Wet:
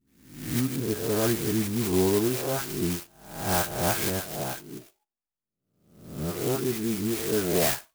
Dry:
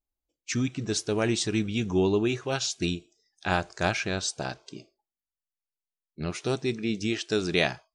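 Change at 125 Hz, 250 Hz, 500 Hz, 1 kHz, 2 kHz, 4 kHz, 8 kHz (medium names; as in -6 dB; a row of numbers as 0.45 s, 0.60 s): +1.0 dB, +1.0 dB, +1.5 dB, +1.0 dB, -3.5 dB, -2.5 dB, +3.0 dB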